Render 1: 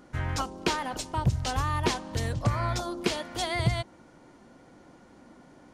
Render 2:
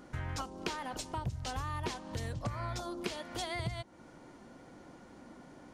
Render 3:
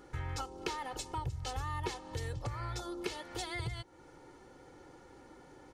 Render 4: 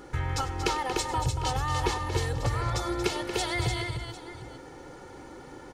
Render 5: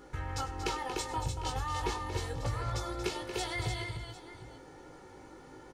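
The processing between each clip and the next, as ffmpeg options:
ffmpeg -i in.wav -af "acompressor=threshold=-39dB:ratio=2.5" out.wav
ffmpeg -i in.wav -af "aecho=1:1:2.3:0.69,volume=-2.5dB" out.wav
ffmpeg -i in.wav -af "aecho=1:1:98|232|297|751:0.15|0.335|0.531|0.15,volume=9dB" out.wav
ffmpeg -i in.wav -filter_complex "[0:a]asplit=2[link_01][link_02];[link_02]adelay=19,volume=-5dB[link_03];[link_01][link_03]amix=inputs=2:normalize=0,volume=-7.5dB" out.wav

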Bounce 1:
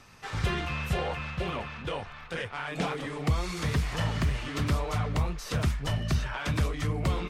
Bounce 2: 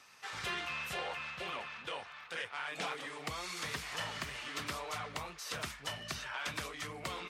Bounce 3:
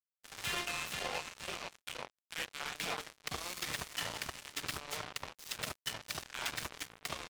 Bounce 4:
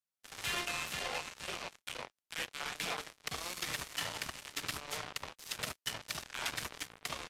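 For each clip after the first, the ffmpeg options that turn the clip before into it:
ffmpeg -i in.wav -af "highpass=frequency=1200:poles=1,volume=-2dB" out.wav
ffmpeg -i in.wav -filter_complex "[0:a]acrossover=split=290|1400[link_01][link_02][link_03];[link_01]adelay=30[link_04];[link_02]adelay=70[link_05];[link_04][link_05][link_03]amix=inputs=3:normalize=0,acrusher=bits=5:mix=0:aa=0.5,volume=3dB" out.wav
ffmpeg -i in.wav -filter_complex "[0:a]acrossover=split=790|1600[link_01][link_02][link_03];[link_01]aeval=exprs='0.0106*(abs(mod(val(0)/0.0106+3,4)-2)-1)':channel_layout=same[link_04];[link_04][link_02][link_03]amix=inputs=3:normalize=0,volume=1dB" -ar 32000 -c:a libvorbis -b:a 96k out.ogg

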